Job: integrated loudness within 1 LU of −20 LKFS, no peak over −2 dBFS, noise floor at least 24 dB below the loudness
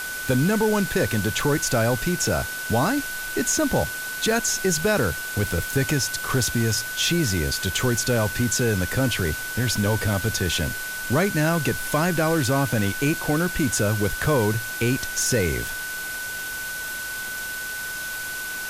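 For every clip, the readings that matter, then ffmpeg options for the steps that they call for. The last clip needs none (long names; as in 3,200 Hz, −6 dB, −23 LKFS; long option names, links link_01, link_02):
interfering tone 1,500 Hz; level of the tone −30 dBFS; background noise floor −31 dBFS; target noise floor −47 dBFS; integrated loudness −23.0 LKFS; sample peak −9.5 dBFS; target loudness −20.0 LKFS
→ -af "bandreject=frequency=1500:width=30"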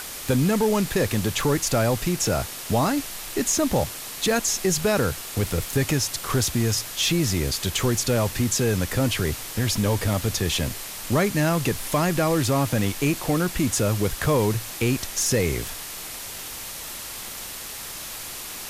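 interfering tone none found; background noise floor −36 dBFS; target noise floor −48 dBFS
→ -af "afftdn=noise_reduction=12:noise_floor=-36"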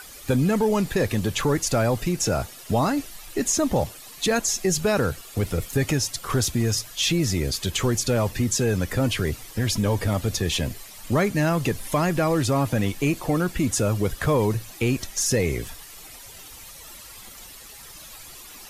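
background noise floor −43 dBFS; target noise floor −48 dBFS
→ -af "afftdn=noise_reduction=6:noise_floor=-43"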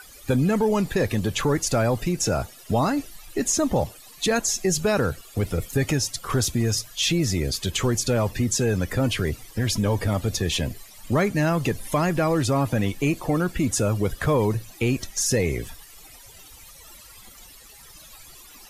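background noise floor −47 dBFS; target noise floor −48 dBFS
→ -af "afftdn=noise_reduction=6:noise_floor=-47"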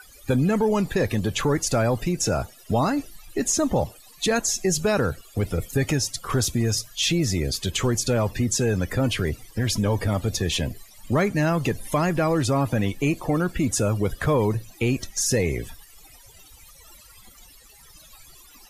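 background noise floor −50 dBFS; integrated loudness −24.0 LKFS; sample peak −11.0 dBFS; target loudness −20.0 LKFS
→ -af "volume=4dB"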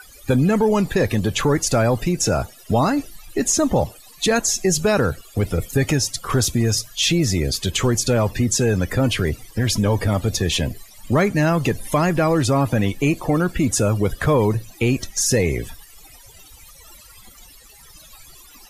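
integrated loudness −20.0 LKFS; sample peak −7.0 dBFS; background noise floor −46 dBFS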